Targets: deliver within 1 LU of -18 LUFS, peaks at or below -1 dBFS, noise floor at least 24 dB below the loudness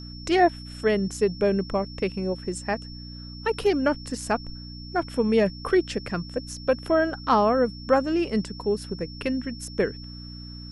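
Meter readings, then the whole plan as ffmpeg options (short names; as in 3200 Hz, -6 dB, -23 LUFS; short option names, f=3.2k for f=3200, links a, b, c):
hum 60 Hz; harmonics up to 300 Hz; hum level -37 dBFS; steady tone 5400 Hz; tone level -43 dBFS; loudness -25.5 LUFS; peak -9.0 dBFS; loudness target -18.0 LUFS
-> -af "bandreject=f=60:t=h:w=4,bandreject=f=120:t=h:w=4,bandreject=f=180:t=h:w=4,bandreject=f=240:t=h:w=4,bandreject=f=300:t=h:w=4"
-af "bandreject=f=5.4k:w=30"
-af "volume=7.5dB"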